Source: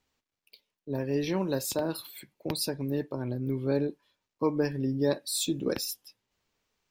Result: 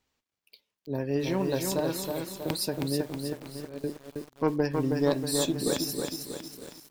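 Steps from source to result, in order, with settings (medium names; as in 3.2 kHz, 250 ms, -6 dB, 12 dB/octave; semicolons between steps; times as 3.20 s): 3.12–3.84 s: gate -22 dBFS, range -20 dB; Chebyshev shaper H 2 -8 dB, 4 -22 dB, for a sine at -13.5 dBFS; on a send: delay 916 ms -20.5 dB; on the sum: bit-crushed delay 319 ms, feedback 55%, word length 8-bit, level -4 dB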